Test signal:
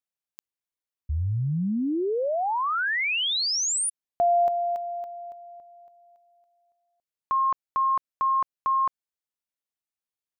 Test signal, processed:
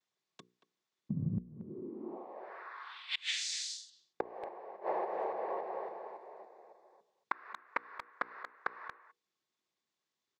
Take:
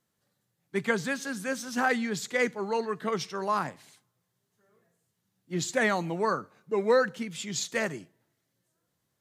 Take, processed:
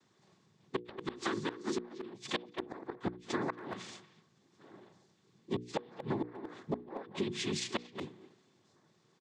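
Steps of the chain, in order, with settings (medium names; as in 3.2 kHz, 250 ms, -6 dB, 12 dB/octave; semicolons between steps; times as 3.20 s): low-pass that closes with the level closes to 1.2 kHz, closed at -21.5 dBFS; noise-vocoded speech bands 6; band-pass 170–5700 Hz; tone controls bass +8 dB, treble +2 dB; small resonant body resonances 360/1100/3500 Hz, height 9 dB, ringing for 50 ms; inverted gate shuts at -18 dBFS, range -32 dB; hum notches 60/120/180/240/300/360/420/480 Hz; speakerphone echo 230 ms, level -15 dB; compression 6:1, threshold -42 dBFS; trim +9 dB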